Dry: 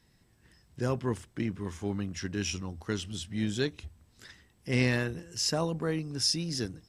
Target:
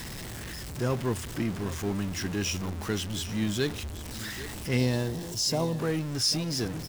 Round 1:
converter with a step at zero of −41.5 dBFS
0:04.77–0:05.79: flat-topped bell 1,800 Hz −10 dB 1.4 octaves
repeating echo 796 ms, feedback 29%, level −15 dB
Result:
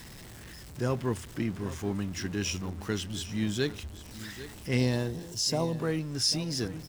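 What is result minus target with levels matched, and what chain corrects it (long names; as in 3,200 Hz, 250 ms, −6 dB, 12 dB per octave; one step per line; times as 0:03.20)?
converter with a step at zero: distortion −7 dB
converter with a step at zero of −33 dBFS
0:04.77–0:05.79: flat-topped bell 1,800 Hz −10 dB 1.4 octaves
repeating echo 796 ms, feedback 29%, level −15 dB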